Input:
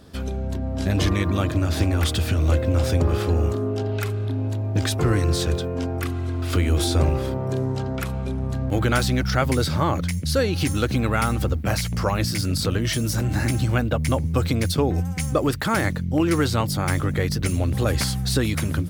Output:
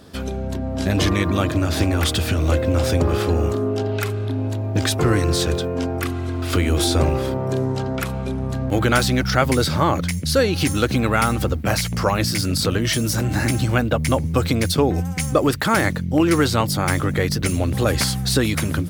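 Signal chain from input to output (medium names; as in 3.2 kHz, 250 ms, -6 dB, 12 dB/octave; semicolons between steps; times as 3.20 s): bass shelf 100 Hz -8 dB; trim +4.5 dB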